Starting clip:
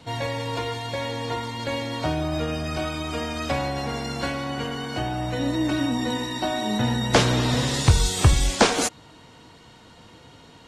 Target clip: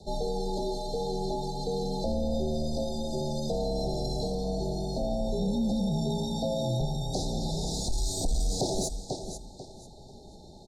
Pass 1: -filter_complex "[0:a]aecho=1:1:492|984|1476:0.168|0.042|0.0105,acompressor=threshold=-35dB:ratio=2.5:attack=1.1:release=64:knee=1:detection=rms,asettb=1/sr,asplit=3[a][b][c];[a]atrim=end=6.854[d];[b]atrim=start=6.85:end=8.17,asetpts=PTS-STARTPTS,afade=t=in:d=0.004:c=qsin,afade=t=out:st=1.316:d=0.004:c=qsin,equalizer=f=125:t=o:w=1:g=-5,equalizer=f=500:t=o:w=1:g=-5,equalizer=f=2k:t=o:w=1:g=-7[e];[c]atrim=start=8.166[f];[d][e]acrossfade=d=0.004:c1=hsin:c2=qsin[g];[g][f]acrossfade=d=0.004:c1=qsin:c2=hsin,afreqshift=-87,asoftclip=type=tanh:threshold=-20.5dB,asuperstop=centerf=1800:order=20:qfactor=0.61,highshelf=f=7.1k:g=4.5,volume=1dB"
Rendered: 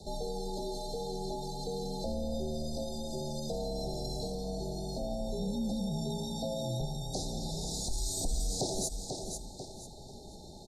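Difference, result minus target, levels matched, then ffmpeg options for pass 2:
compressor: peak gain reduction +7 dB; 8000 Hz band +5.0 dB
-filter_complex "[0:a]aecho=1:1:492|984|1476:0.168|0.042|0.0105,acompressor=threshold=-23.5dB:ratio=2.5:attack=1.1:release=64:knee=1:detection=rms,asettb=1/sr,asplit=3[a][b][c];[a]atrim=end=6.854[d];[b]atrim=start=6.85:end=8.17,asetpts=PTS-STARTPTS,afade=t=in:d=0.004:c=qsin,afade=t=out:st=1.316:d=0.004:c=qsin,equalizer=f=125:t=o:w=1:g=-5,equalizer=f=500:t=o:w=1:g=-5,equalizer=f=2k:t=o:w=1:g=-7[e];[c]atrim=start=8.166[f];[d][e]acrossfade=d=0.004:c1=hsin:c2=qsin[g];[g][f]acrossfade=d=0.004:c1=qsin:c2=hsin,afreqshift=-87,asoftclip=type=tanh:threshold=-20.5dB,asuperstop=centerf=1800:order=20:qfactor=0.61,highshelf=f=7.1k:g=-6,volume=1dB"

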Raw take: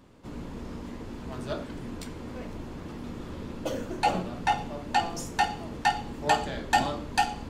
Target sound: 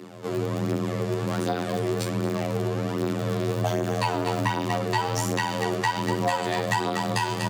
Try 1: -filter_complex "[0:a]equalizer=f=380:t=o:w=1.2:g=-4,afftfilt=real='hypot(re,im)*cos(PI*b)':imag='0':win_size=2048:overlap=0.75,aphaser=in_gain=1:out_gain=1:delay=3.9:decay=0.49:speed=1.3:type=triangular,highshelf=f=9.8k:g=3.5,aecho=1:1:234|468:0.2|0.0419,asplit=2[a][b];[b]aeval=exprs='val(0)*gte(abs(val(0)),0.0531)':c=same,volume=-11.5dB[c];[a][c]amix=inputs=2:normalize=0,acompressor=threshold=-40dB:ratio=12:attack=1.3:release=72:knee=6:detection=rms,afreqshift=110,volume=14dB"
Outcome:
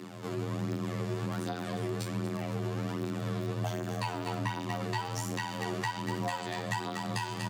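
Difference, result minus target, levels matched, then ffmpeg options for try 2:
compressor: peak gain reduction +8.5 dB; 500 Hz band -2.5 dB
-filter_complex "[0:a]equalizer=f=380:t=o:w=1.2:g=2.5,afftfilt=real='hypot(re,im)*cos(PI*b)':imag='0':win_size=2048:overlap=0.75,aphaser=in_gain=1:out_gain=1:delay=3.9:decay=0.49:speed=1.3:type=triangular,highshelf=f=9.8k:g=3.5,aecho=1:1:234|468:0.2|0.0419,asplit=2[a][b];[b]aeval=exprs='val(0)*gte(abs(val(0)),0.0531)':c=same,volume=-11.5dB[c];[a][c]amix=inputs=2:normalize=0,acompressor=threshold=-30dB:ratio=12:attack=1.3:release=72:knee=6:detection=rms,afreqshift=110,volume=14dB"

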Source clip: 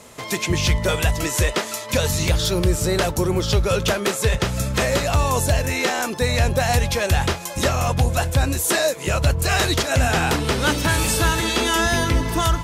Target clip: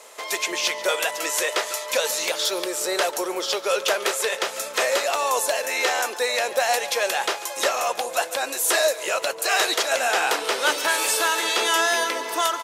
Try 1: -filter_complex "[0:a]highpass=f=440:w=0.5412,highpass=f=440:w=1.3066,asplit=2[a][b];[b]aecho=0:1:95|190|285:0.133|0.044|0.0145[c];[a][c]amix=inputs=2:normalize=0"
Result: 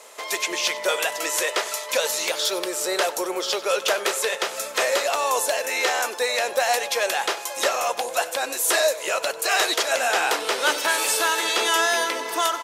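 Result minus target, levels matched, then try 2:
echo 47 ms early
-filter_complex "[0:a]highpass=f=440:w=0.5412,highpass=f=440:w=1.3066,asplit=2[a][b];[b]aecho=0:1:142|284|426:0.133|0.044|0.0145[c];[a][c]amix=inputs=2:normalize=0"

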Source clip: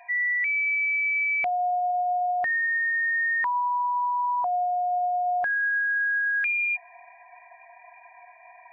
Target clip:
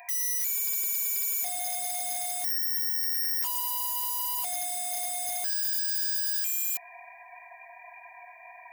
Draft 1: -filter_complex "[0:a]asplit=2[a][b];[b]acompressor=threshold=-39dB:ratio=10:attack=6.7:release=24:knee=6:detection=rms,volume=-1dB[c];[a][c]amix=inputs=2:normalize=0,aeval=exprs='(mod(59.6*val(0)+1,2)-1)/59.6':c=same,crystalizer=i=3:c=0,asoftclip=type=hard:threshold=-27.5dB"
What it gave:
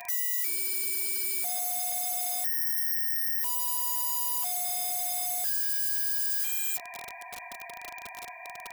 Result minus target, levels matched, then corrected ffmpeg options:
125 Hz band +3.0 dB
-filter_complex "[0:a]asplit=2[a][b];[b]acompressor=threshold=-39dB:ratio=10:attack=6.7:release=24:knee=6:detection=rms,asuperpass=centerf=170:order=4:qfactor=7.7,volume=-1dB[c];[a][c]amix=inputs=2:normalize=0,aeval=exprs='(mod(59.6*val(0)+1,2)-1)/59.6':c=same,crystalizer=i=3:c=0,asoftclip=type=hard:threshold=-27.5dB"

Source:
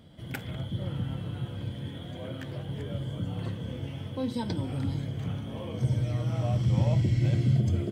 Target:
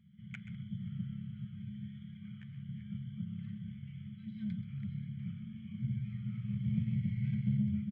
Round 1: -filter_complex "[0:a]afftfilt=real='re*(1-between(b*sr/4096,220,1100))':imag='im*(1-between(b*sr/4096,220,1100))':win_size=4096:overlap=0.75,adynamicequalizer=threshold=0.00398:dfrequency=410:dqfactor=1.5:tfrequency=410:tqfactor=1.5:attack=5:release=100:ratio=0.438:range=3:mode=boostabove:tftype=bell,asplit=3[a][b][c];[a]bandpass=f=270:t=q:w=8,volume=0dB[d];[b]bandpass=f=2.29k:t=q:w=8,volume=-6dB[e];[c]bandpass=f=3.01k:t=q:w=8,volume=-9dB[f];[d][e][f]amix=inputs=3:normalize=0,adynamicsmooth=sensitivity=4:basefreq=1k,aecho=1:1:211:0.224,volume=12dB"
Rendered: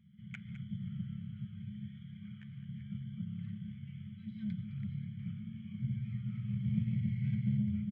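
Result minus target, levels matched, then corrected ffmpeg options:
echo 81 ms late
-filter_complex "[0:a]afftfilt=real='re*(1-between(b*sr/4096,220,1100))':imag='im*(1-between(b*sr/4096,220,1100))':win_size=4096:overlap=0.75,adynamicequalizer=threshold=0.00398:dfrequency=410:dqfactor=1.5:tfrequency=410:tqfactor=1.5:attack=5:release=100:ratio=0.438:range=3:mode=boostabove:tftype=bell,asplit=3[a][b][c];[a]bandpass=f=270:t=q:w=8,volume=0dB[d];[b]bandpass=f=2.29k:t=q:w=8,volume=-6dB[e];[c]bandpass=f=3.01k:t=q:w=8,volume=-9dB[f];[d][e][f]amix=inputs=3:normalize=0,adynamicsmooth=sensitivity=4:basefreq=1k,aecho=1:1:130:0.224,volume=12dB"

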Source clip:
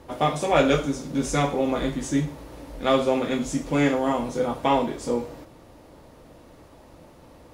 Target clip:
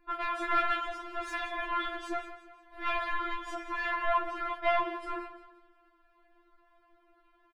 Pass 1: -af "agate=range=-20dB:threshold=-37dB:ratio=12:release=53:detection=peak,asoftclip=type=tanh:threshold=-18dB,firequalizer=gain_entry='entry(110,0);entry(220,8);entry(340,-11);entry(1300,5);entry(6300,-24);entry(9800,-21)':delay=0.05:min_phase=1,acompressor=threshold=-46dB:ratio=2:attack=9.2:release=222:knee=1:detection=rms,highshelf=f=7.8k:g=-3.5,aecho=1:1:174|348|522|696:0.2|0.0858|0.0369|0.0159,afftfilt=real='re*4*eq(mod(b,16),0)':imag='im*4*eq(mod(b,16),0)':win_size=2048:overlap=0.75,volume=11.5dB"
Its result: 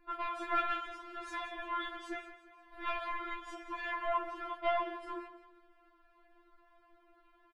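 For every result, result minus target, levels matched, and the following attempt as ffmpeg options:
compressor: peak gain reduction +7.5 dB; soft clip: distortion -6 dB
-af "agate=range=-20dB:threshold=-37dB:ratio=12:release=53:detection=peak,asoftclip=type=tanh:threshold=-18dB,firequalizer=gain_entry='entry(110,0);entry(220,8);entry(340,-11);entry(1300,5);entry(6300,-24);entry(9800,-21)':delay=0.05:min_phase=1,acompressor=threshold=-34.5dB:ratio=2:attack=9.2:release=222:knee=1:detection=rms,highshelf=f=7.8k:g=-3.5,aecho=1:1:174|348|522|696:0.2|0.0858|0.0369|0.0159,afftfilt=real='re*4*eq(mod(b,16),0)':imag='im*4*eq(mod(b,16),0)':win_size=2048:overlap=0.75,volume=11.5dB"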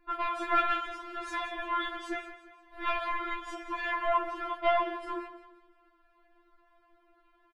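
soft clip: distortion -6 dB
-af "agate=range=-20dB:threshold=-37dB:ratio=12:release=53:detection=peak,asoftclip=type=tanh:threshold=-26dB,firequalizer=gain_entry='entry(110,0);entry(220,8);entry(340,-11);entry(1300,5);entry(6300,-24);entry(9800,-21)':delay=0.05:min_phase=1,acompressor=threshold=-34.5dB:ratio=2:attack=9.2:release=222:knee=1:detection=rms,highshelf=f=7.8k:g=-3.5,aecho=1:1:174|348|522|696:0.2|0.0858|0.0369|0.0159,afftfilt=real='re*4*eq(mod(b,16),0)':imag='im*4*eq(mod(b,16),0)':win_size=2048:overlap=0.75,volume=11.5dB"

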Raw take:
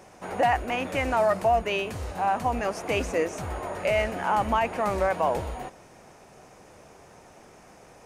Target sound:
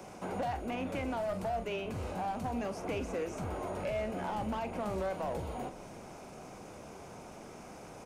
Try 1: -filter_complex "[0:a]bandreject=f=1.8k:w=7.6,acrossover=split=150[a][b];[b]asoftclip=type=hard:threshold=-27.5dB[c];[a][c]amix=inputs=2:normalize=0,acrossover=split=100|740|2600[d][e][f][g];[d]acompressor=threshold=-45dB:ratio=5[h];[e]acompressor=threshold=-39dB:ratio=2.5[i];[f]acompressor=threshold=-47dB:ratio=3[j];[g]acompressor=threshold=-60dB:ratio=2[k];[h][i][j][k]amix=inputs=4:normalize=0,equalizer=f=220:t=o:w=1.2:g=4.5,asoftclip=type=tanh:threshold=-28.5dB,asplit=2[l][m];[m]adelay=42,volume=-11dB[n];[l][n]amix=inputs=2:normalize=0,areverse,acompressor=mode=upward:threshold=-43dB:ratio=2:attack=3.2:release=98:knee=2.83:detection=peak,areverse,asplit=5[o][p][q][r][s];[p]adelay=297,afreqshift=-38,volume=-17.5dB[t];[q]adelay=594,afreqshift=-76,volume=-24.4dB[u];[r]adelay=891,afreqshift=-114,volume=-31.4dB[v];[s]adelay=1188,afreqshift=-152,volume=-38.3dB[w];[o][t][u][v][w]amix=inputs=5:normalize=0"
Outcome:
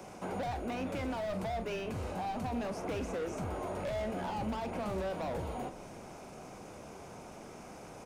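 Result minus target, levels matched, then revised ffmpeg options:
hard clip: distortion +13 dB
-filter_complex "[0:a]bandreject=f=1.8k:w=7.6,acrossover=split=150[a][b];[b]asoftclip=type=hard:threshold=-18dB[c];[a][c]amix=inputs=2:normalize=0,acrossover=split=100|740|2600[d][e][f][g];[d]acompressor=threshold=-45dB:ratio=5[h];[e]acompressor=threshold=-39dB:ratio=2.5[i];[f]acompressor=threshold=-47dB:ratio=3[j];[g]acompressor=threshold=-60dB:ratio=2[k];[h][i][j][k]amix=inputs=4:normalize=0,equalizer=f=220:t=o:w=1.2:g=4.5,asoftclip=type=tanh:threshold=-28.5dB,asplit=2[l][m];[m]adelay=42,volume=-11dB[n];[l][n]amix=inputs=2:normalize=0,areverse,acompressor=mode=upward:threshold=-43dB:ratio=2:attack=3.2:release=98:knee=2.83:detection=peak,areverse,asplit=5[o][p][q][r][s];[p]adelay=297,afreqshift=-38,volume=-17.5dB[t];[q]adelay=594,afreqshift=-76,volume=-24.4dB[u];[r]adelay=891,afreqshift=-114,volume=-31.4dB[v];[s]adelay=1188,afreqshift=-152,volume=-38.3dB[w];[o][t][u][v][w]amix=inputs=5:normalize=0"

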